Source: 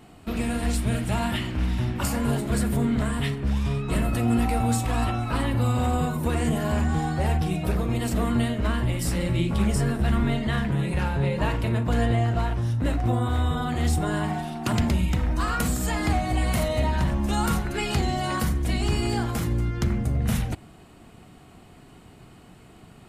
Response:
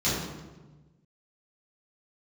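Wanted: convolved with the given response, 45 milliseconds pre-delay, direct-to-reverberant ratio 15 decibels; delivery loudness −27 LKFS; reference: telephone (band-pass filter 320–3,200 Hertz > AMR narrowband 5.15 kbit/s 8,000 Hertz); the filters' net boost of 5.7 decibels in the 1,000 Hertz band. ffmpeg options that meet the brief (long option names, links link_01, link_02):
-filter_complex "[0:a]equalizer=frequency=1000:width_type=o:gain=8,asplit=2[link_01][link_02];[1:a]atrim=start_sample=2205,adelay=45[link_03];[link_02][link_03]afir=irnorm=-1:irlink=0,volume=-27.5dB[link_04];[link_01][link_04]amix=inputs=2:normalize=0,highpass=320,lowpass=3200,volume=3.5dB" -ar 8000 -c:a libopencore_amrnb -b:a 5150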